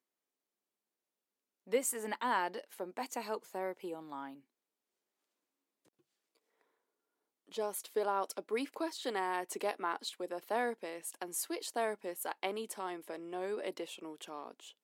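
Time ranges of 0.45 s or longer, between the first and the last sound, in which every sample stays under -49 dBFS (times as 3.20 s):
4.35–7.52 s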